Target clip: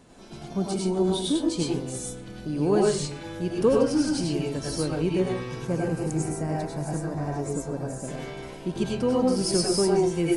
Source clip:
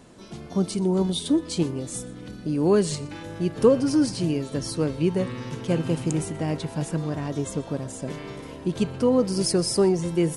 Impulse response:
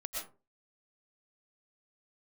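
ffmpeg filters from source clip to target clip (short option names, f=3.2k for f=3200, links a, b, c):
-filter_complex "[0:a]asettb=1/sr,asplit=3[a][b][c];[a]atrim=end=5.554[d];[b]atrim=start=5.55:end=8.04,asetpts=PTS-STARTPTS,afade=t=in:d=0.004:c=qsin,afade=t=out:st=2.486:d=0.004:c=qsin,equalizer=f=3.2k:t=o:w=0.71:g=-15[e];[c]atrim=start=8.036[f];[d][e]acrossfade=d=0.004:c1=hsin:c2=qsin[g];[g][f]acrossfade=d=0.004:c1=qsin:c2=hsin[h];[1:a]atrim=start_sample=2205,asetrate=52920,aresample=44100[i];[h][i]afir=irnorm=-1:irlink=0,volume=1.5dB"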